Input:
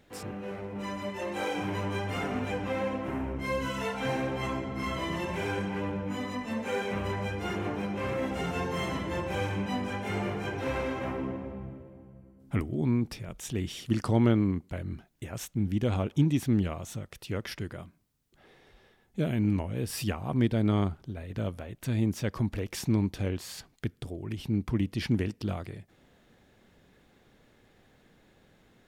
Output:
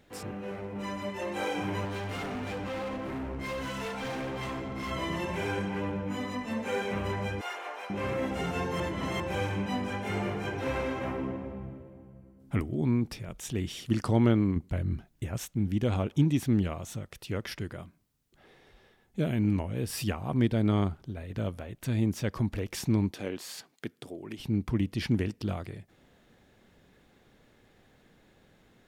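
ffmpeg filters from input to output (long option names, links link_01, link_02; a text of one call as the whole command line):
ffmpeg -i in.wav -filter_complex "[0:a]asettb=1/sr,asplit=3[link_01][link_02][link_03];[link_01]atrim=end=1.854[link_04];[link_02]atrim=start=1.85:end=4.91,asetpts=PTS-STARTPTS,afade=type=in:duration=0.004:curve=qsin,afade=type=out:start_time=3.056:duration=0.004:curve=qsin,asoftclip=type=hard:threshold=-32.5dB[link_05];[link_03]atrim=start=4.906[link_06];[link_04][link_05]acrossfade=duration=0.004:curve1=hsin:curve2=qsin[link_07];[link_07][link_06]acrossfade=duration=0.004:curve1=qsin:curve2=hsin,asettb=1/sr,asplit=3[link_08][link_09][link_10];[link_08]atrim=end=7.414[link_11];[link_09]atrim=start=7.41:end=7.9,asetpts=PTS-STARTPTS,afade=type=in:duration=0.004:curve=qsin,afade=type=out:start_time=0.486:duration=0.004:curve=qsin,highpass=frequency=610:width=0.5412,highpass=frequency=610:width=1.3066[link_12];[link_10]atrim=start=7.896[link_13];[link_11][link_12]acrossfade=duration=0.004:curve1=hsin:curve2=qsin[link_14];[link_14][link_13]acrossfade=duration=0.004:curve1=qsin:curve2=hsin,asettb=1/sr,asplit=3[link_15][link_16][link_17];[link_15]atrim=end=14.564[link_18];[link_16]atrim=start=14.56:end=15.37,asetpts=PTS-STARTPTS,afade=type=in:duration=0.004:curve=qsin,afade=type=out:start_time=0.806:duration=0.004:curve=qsin,lowshelf=frequency=180:gain=8.5[link_19];[link_17]atrim=start=15.366[link_20];[link_18][link_19]acrossfade=duration=0.004:curve1=hsin:curve2=qsin[link_21];[link_21][link_20]acrossfade=duration=0.004:curve1=qsin:curve2=hsin,asettb=1/sr,asplit=3[link_22][link_23][link_24];[link_22]atrim=end=23.114[link_25];[link_23]atrim=start=23.11:end=24.4,asetpts=PTS-STARTPTS,afade=type=in:duration=0.004:curve=qsin,afade=type=out:start_time=1.286:duration=0.004:curve=qsin,highpass=240[link_26];[link_24]atrim=start=24.396[link_27];[link_25][link_26]acrossfade=duration=0.004:curve1=hsin:curve2=qsin[link_28];[link_28][link_27]acrossfade=duration=0.004:curve1=qsin:curve2=hsin,asplit=3[link_29][link_30][link_31];[link_29]atrim=end=8.802[link_32];[link_30]atrim=start=8.798:end=9.202,asetpts=PTS-STARTPTS,areverse[link_33];[link_31]atrim=start=9.198[link_34];[link_32][link_33]acrossfade=duration=0.004:curve1=hsin:curve2=hsin[link_35];[link_35][link_34]acrossfade=duration=0.004:curve1=hsin:curve2=hsin" out.wav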